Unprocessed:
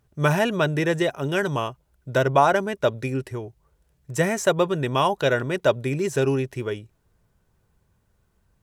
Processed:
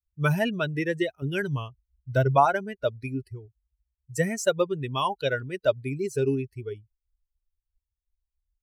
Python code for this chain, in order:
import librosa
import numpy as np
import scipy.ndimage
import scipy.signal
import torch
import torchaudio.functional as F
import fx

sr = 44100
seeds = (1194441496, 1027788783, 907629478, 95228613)

y = fx.bin_expand(x, sr, power=2.0)
y = fx.low_shelf(y, sr, hz=200.0, db=8.5, at=(1.22, 2.46))